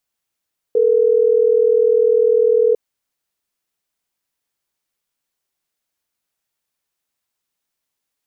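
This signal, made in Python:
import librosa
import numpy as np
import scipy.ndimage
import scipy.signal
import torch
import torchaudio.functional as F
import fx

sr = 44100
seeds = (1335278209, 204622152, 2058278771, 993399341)

y = fx.call_progress(sr, length_s=3.12, kind='ringback tone', level_db=-13.5)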